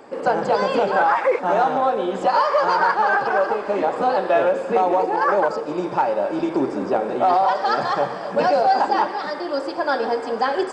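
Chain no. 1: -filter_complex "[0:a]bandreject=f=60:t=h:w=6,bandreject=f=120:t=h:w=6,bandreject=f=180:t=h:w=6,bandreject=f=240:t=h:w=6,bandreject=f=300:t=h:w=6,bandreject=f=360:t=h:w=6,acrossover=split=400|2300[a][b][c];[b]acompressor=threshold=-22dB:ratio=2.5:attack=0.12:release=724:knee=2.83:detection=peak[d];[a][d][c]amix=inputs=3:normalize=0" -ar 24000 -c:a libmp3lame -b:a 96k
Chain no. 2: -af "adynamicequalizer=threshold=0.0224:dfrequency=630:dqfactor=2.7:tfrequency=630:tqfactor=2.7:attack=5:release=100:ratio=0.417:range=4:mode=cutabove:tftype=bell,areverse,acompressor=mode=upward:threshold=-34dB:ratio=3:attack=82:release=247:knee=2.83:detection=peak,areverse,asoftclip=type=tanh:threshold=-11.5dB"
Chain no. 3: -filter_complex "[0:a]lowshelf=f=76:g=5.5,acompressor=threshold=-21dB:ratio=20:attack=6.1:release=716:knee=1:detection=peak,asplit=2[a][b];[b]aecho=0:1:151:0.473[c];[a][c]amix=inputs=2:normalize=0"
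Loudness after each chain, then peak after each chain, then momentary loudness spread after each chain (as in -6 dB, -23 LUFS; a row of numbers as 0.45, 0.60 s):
-25.0, -23.0, -27.0 LUFS; -12.0, -11.5, -12.5 dBFS; 4, 5, 2 LU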